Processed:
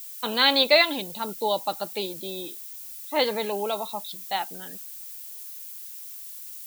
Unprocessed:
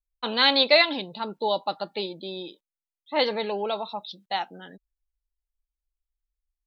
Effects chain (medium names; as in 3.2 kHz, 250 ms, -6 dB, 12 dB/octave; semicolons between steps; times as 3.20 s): added noise violet -40 dBFS